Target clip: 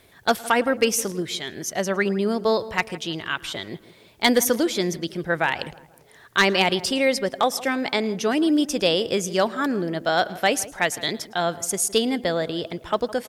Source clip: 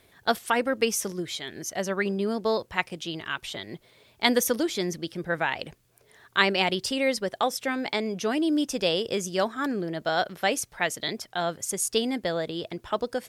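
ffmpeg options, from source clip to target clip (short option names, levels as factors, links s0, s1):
-filter_complex "[0:a]asplit=2[s0][s1];[s1]adelay=162,lowpass=f=1400:p=1,volume=0.141,asplit=2[s2][s3];[s3]adelay=162,lowpass=f=1400:p=1,volume=0.47,asplit=2[s4][s5];[s5]adelay=162,lowpass=f=1400:p=1,volume=0.47,asplit=2[s6][s7];[s7]adelay=162,lowpass=f=1400:p=1,volume=0.47[s8];[s2][s4][s6][s8]amix=inputs=4:normalize=0[s9];[s0][s9]amix=inputs=2:normalize=0,asoftclip=type=hard:threshold=0.211,asplit=2[s10][s11];[s11]aecho=0:1:110:0.0668[s12];[s10][s12]amix=inputs=2:normalize=0,volume=1.68"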